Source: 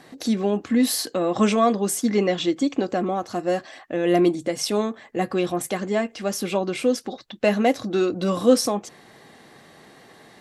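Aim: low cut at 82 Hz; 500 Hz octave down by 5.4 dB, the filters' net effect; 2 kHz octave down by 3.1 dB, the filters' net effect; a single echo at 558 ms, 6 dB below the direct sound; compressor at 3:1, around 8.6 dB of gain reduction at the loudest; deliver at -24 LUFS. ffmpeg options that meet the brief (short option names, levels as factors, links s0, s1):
-af "highpass=82,equalizer=f=500:t=o:g=-7,equalizer=f=2000:t=o:g=-3.5,acompressor=threshold=0.0398:ratio=3,aecho=1:1:558:0.501,volume=2.11"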